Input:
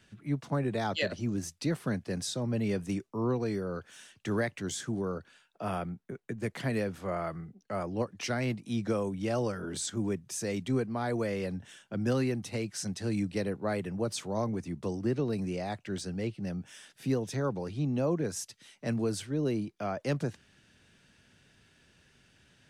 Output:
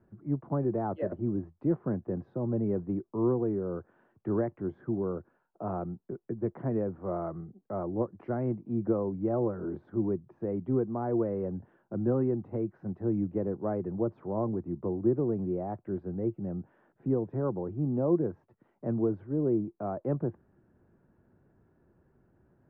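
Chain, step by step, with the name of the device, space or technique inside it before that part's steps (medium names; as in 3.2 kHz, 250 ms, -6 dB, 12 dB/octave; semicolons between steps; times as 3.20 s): under water (low-pass 1.1 kHz 24 dB/octave; peaking EQ 350 Hz +8 dB 0.26 oct)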